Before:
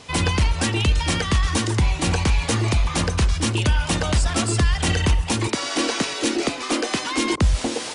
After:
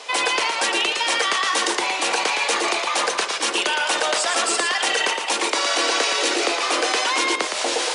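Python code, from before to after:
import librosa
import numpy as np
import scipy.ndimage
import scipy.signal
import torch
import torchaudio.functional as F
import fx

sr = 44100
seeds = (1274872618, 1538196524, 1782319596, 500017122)

p1 = scipy.signal.sosfilt(scipy.signal.butter(4, 450.0, 'highpass', fs=sr, output='sos'), x)
p2 = fx.high_shelf(p1, sr, hz=9300.0, db=-6.0)
p3 = fx.over_compress(p2, sr, threshold_db=-30.0, ratio=-1.0)
p4 = p2 + F.gain(torch.from_numpy(p3), -2.5).numpy()
p5 = p4 + 10.0 ** (-6.0 / 20.0) * np.pad(p4, (int(114 * sr / 1000.0), 0))[:len(p4)]
y = F.gain(torch.from_numpy(p5), 1.5).numpy()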